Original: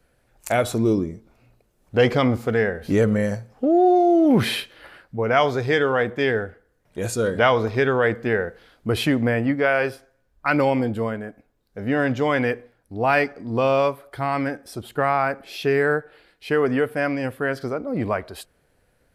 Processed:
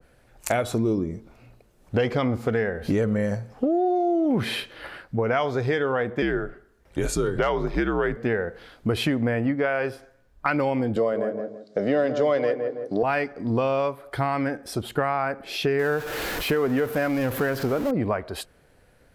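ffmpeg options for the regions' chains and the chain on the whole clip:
-filter_complex "[0:a]asettb=1/sr,asplit=3[a][b][c];[a]atrim=end=6.224[d];[b]atrim=start=6.22:end=8.17,asetpts=PTS-STARTPTS,afade=t=in:d=0.004:c=qsin,afade=t=out:st=1.946:d=0.004:c=qsin,volume=7dB,asoftclip=hard,volume=-7dB,afreqshift=-72[e];[c]atrim=start=8.166[f];[d][e]acrossfade=d=0.004:c1=hsin:c2=qsin[g];[g][f]acrossfade=d=0.004:c1=qsin:c2=hsin,asettb=1/sr,asplit=3[h][i][j];[h]atrim=end=10.964[k];[i]atrim=start=10.96:end=13.03,asetpts=PTS-STARTPTS,afade=t=in:d=0.004:c=qsin,afade=t=out:st=2.066:d=0.004:c=qsin,acontrast=90,highpass=f=170:w=0.5412,highpass=f=170:w=1.3066,equalizer=f=240:t=q:w=4:g=-10,equalizer=f=590:t=q:w=4:g=8,equalizer=f=900:t=q:w=4:g=-8,equalizer=f=1.6k:t=q:w=4:g=-7,equalizer=f=2.5k:t=q:w=4:g=-8,equalizer=f=4.7k:t=q:w=4:g=4,lowpass=f=7.7k:w=0.5412,lowpass=f=7.7k:w=1.3066,asplit=2[l][m];[m]adelay=164,lowpass=f=1.1k:p=1,volume=-9dB,asplit=2[n][o];[o]adelay=164,lowpass=f=1.1k:p=1,volume=0.27,asplit=2[p][q];[q]adelay=164,lowpass=f=1.1k:p=1,volume=0.27[r];[l][n][p][r]amix=inputs=4:normalize=0,atrim=end_sample=91287[s];[j]atrim=start=13.026[t];[k][s]acrossfade=d=0.004:c1=hsin:c2=qsin[u];[u][t]acrossfade=d=0.004:c1=qsin:c2=hsin,asettb=1/sr,asplit=3[v][w][x];[v]atrim=end=15.794[y];[w]atrim=start=15.79:end=17.91,asetpts=PTS-STARTPTS,afade=t=in:d=0.004:c=qsin,afade=t=out:st=2.116:d=0.004:c=qsin,aeval=exprs='val(0)+0.5*0.0398*sgn(val(0))':c=same,equalizer=f=12k:w=6.4:g=14[z];[x]atrim=start=17.906[aa];[y][z]acrossfade=d=0.004:c1=hsin:c2=qsin[ab];[ab][aa]acrossfade=d=0.004:c1=qsin:c2=hsin,highshelf=f=8.3k:g=-4.5,acompressor=threshold=-28dB:ratio=4,adynamicequalizer=threshold=0.00708:dfrequency=1700:dqfactor=0.7:tfrequency=1700:tqfactor=0.7:attack=5:release=100:ratio=0.375:range=2:mode=cutabove:tftype=highshelf,volume=6dB"

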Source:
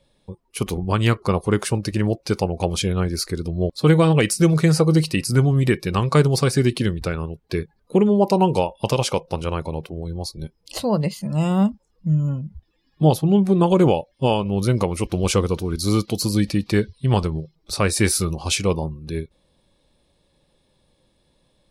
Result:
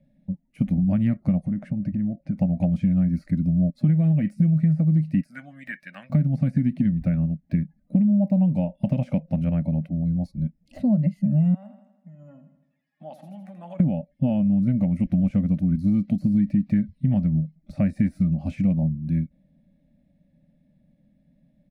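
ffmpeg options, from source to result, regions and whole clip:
-filter_complex "[0:a]asettb=1/sr,asplit=3[a][b][c];[a]atrim=end=1.474[d];[b]atrim=start=1.47:end=2.38,asetpts=PTS-STARTPTS,afade=t=in:d=0.004:c=qsin,afade=t=out:st=0.906:d=0.004:c=qsin,lowpass=f=1.1k:p=1,acompressor=threshold=-25dB:ratio=10:attack=3.2:release=140:knee=1:detection=peak[e];[c]atrim=start=2.376[f];[d][e]acrossfade=d=0.004:c1=hsin:c2=qsin[g];[g][f]acrossfade=d=0.004:c1=qsin:c2=hsin,asettb=1/sr,asplit=3[h][i][j];[h]atrim=end=5.224[k];[i]atrim=start=5.22:end=6.1,asetpts=PTS-STARTPTS,afade=t=in:d=0.004:c=qsin,afade=t=out:st=0.876:d=0.004:c=qsin,highpass=1.2k,equalizer=f=1.6k:w=3.6:g=10[l];[j]atrim=start=6.096[m];[k][l]acrossfade=d=0.004:c1=hsin:c2=qsin[n];[n][m]acrossfade=d=0.004:c1=qsin:c2=hsin,asettb=1/sr,asplit=3[o][p][q];[o]atrim=end=11.544[r];[p]atrim=start=11.54:end=13.8,asetpts=PTS-STARTPTS,afade=t=in:d=0.004:c=qsin,afade=t=out:st=2.256:d=0.004:c=qsin,acompressor=threshold=-20dB:ratio=10:attack=3.2:release=140:knee=1:detection=peak,highpass=f=930:t=q:w=1.7,aecho=1:1:81|162|243|324|405|486:0.282|0.155|0.0853|0.0469|0.0258|0.0142,atrim=end_sample=99666[s];[q]atrim=start=13.796[t];[r][s]acrossfade=d=0.004:c1=hsin:c2=qsin[u];[u][t]acrossfade=d=0.004:c1=qsin:c2=hsin,deesser=0.65,firequalizer=gain_entry='entry(110,0);entry(170,14);entry(270,10);entry(400,-28);entry(590,3);entry(1000,-22);entry(1900,-3);entry(3200,-19);entry(4700,-22)':delay=0.05:min_phase=1,acompressor=threshold=-15dB:ratio=6,volume=-2.5dB"

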